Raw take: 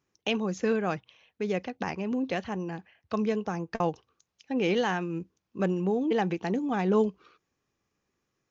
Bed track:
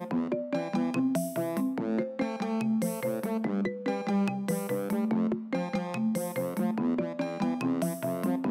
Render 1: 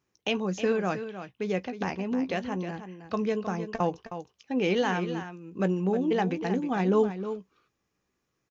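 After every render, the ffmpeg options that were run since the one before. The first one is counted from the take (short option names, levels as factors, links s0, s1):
-filter_complex "[0:a]asplit=2[s0][s1];[s1]adelay=16,volume=0.237[s2];[s0][s2]amix=inputs=2:normalize=0,asplit=2[s3][s4];[s4]aecho=0:1:313:0.299[s5];[s3][s5]amix=inputs=2:normalize=0"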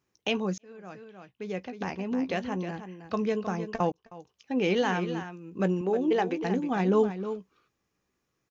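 -filter_complex "[0:a]asettb=1/sr,asplit=3[s0][s1][s2];[s0]atrim=end=5.814[s3];[s1]atrim=start=5.81:end=6.44,asetpts=PTS-STARTPTS,afade=t=in:d=0.004:c=qsin,afade=t=out:st=0.626:d=0.004:c=qsin,lowshelf=f=240:t=q:w=1.5:g=-7.5[s4];[s2]atrim=start=6.436[s5];[s3][s4]acrossfade=d=0.004:c1=hsin:c2=qsin[s6];[s6][s5]acrossfade=d=0.004:c1=qsin:c2=hsin,asplit=3[s7][s8][s9];[s7]atrim=end=0.58,asetpts=PTS-STARTPTS,afade=t=out:st=0.576:d=0.004:c=hsin[s10];[s8]atrim=start=0.58:end=3.92,asetpts=PTS-STARTPTS,afade=t=in:d=1.72,afade=t=out:st=3.336:d=0.004:c=hsin[s11];[s9]atrim=start=3.92,asetpts=PTS-STARTPTS,afade=t=in:d=0.6[s12];[s10][s11][s12]concat=n=3:v=0:a=1"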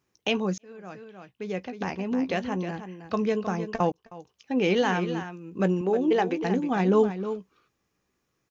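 -af "volume=1.33"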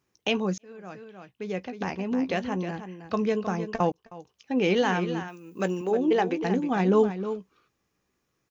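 -filter_complex "[0:a]asplit=3[s0][s1][s2];[s0]afade=t=out:st=5.27:d=0.02[s3];[s1]aemphasis=mode=production:type=bsi,afade=t=in:st=5.27:d=0.02,afade=t=out:st=5.9:d=0.02[s4];[s2]afade=t=in:st=5.9:d=0.02[s5];[s3][s4][s5]amix=inputs=3:normalize=0"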